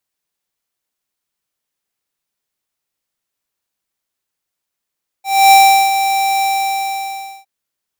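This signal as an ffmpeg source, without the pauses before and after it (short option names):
-f lavfi -i "aevalsrc='0.531*(2*lt(mod(782*t,1),0.5)-1)':d=2.21:s=44100,afade=t=in:d=0.277,afade=t=out:st=0.277:d=0.385:silence=0.335,afade=t=out:st=1.18:d=1.03"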